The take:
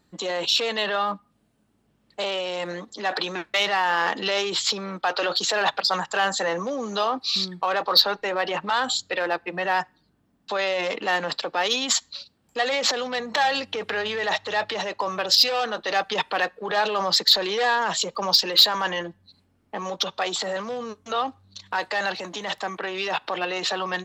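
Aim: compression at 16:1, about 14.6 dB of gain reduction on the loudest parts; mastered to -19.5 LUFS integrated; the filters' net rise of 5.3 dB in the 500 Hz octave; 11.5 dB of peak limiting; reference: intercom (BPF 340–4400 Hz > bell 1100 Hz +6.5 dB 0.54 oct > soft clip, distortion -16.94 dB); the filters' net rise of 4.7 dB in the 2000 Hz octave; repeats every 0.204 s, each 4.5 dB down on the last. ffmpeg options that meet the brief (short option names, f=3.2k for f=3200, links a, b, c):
-af "equalizer=f=500:t=o:g=6.5,equalizer=f=2k:t=o:g=4.5,acompressor=threshold=-25dB:ratio=16,alimiter=limit=-21dB:level=0:latency=1,highpass=340,lowpass=4.4k,equalizer=f=1.1k:t=o:w=0.54:g=6.5,aecho=1:1:204|408|612|816|1020|1224|1428|1632|1836:0.596|0.357|0.214|0.129|0.0772|0.0463|0.0278|0.0167|0.01,asoftclip=threshold=-22.5dB,volume=11dB"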